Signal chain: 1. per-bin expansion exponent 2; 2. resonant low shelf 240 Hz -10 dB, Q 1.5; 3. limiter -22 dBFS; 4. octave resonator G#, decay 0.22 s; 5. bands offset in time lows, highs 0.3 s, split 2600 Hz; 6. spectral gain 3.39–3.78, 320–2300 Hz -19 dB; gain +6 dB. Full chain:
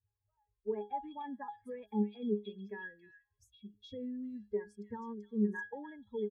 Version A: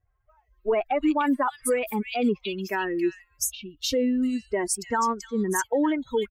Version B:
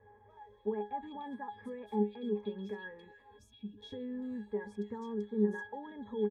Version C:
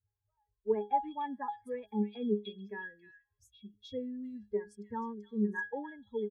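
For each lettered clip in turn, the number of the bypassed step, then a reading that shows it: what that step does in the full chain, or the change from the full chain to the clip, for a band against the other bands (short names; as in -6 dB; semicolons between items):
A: 4, 1 kHz band +3.0 dB; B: 1, loudness change +1.0 LU; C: 3, mean gain reduction 2.0 dB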